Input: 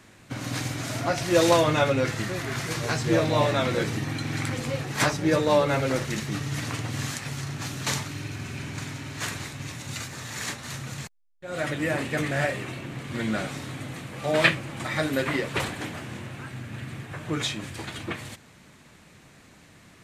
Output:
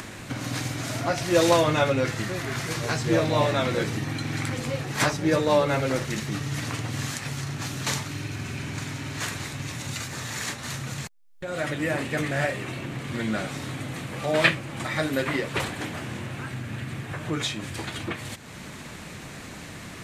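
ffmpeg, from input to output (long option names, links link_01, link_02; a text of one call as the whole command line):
ffmpeg -i in.wav -af "acompressor=mode=upward:threshold=-27dB:ratio=2.5" out.wav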